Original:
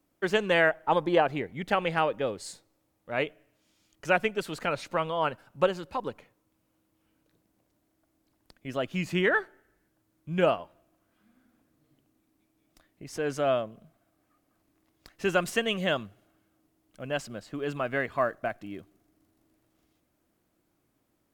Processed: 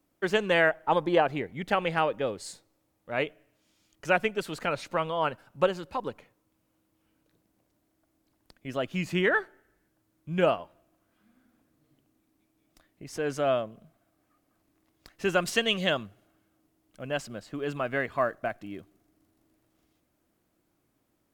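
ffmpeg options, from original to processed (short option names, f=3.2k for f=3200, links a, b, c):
-filter_complex "[0:a]asettb=1/sr,asplit=3[a][b][c];[a]atrim=end=15.474[d];[b]atrim=start=15.47:end=15.9,asetpts=PTS-STARTPTS,afade=t=in:d=0.004:c=qsin,afade=t=out:st=0.426:d=0.004:c=qsin,equalizer=f=4.3k:t=o:w=1.1:g=8.5[e];[c]atrim=start=15.896[f];[d][e]acrossfade=d=0.004:c1=hsin:c2=qsin[g];[g][f]acrossfade=d=0.004:c1=qsin:c2=hsin"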